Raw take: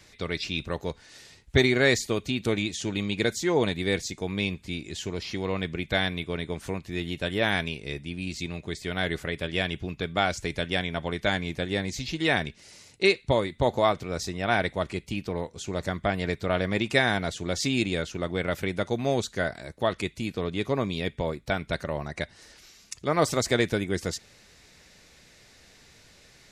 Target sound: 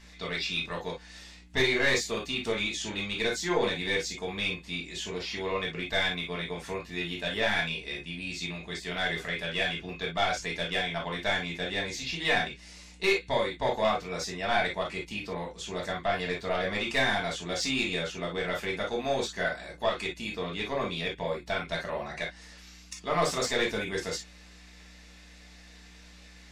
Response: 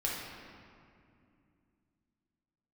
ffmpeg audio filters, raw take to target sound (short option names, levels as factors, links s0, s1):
-filter_complex "[0:a]aeval=exprs='val(0)+0.00708*(sin(2*PI*60*n/s)+sin(2*PI*2*60*n/s)/2+sin(2*PI*3*60*n/s)/3+sin(2*PI*4*60*n/s)/4+sin(2*PI*5*60*n/s)/5)':c=same,asplit=2[s0][s1];[s1]highpass=f=720:p=1,volume=6.31,asoftclip=type=tanh:threshold=0.531[s2];[s0][s2]amix=inputs=2:normalize=0,lowpass=f=5400:p=1,volume=0.501[s3];[1:a]atrim=start_sample=2205,atrim=end_sample=4410,asetrate=66150,aresample=44100[s4];[s3][s4]afir=irnorm=-1:irlink=0,volume=0.398"